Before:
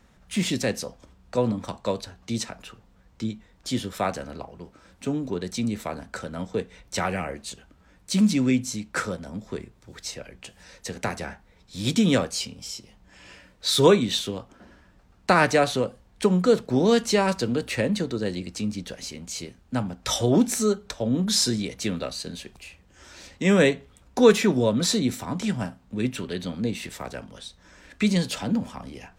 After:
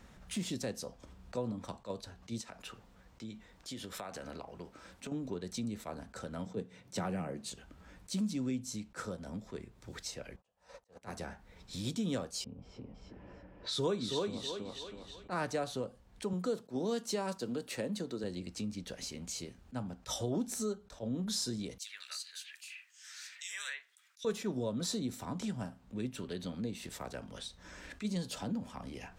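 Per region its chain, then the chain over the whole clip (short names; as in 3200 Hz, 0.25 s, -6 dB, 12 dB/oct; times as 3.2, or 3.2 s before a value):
2.41–5.12 low shelf 240 Hz -6 dB + compressor 4:1, threshold -35 dBFS
6.46–7.5 HPF 120 Hz 24 dB/oct + low shelf 280 Hz +11.5 dB
10.36–11.02 auto swell 0.659 s + band shelf 780 Hz +13 dB + upward expander 2.5:1, over -58 dBFS
12.44–15.58 low-pass opened by the level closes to 650 Hz, open at -17 dBFS + thinning echo 0.322 s, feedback 27%, high-pass 230 Hz, level -3 dB
16.33–18.24 HPF 160 Hz + high shelf 10000 Hz +5.5 dB
21.78–24.25 Chebyshev high-pass 1700 Hz, order 3 + bands offset in time highs, lows 80 ms, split 2900 Hz
whole clip: dynamic EQ 2200 Hz, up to -7 dB, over -45 dBFS, Q 1.5; compressor 2:1, threshold -46 dBFS; attack slew limiter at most 370 dB/s; gain +1 dB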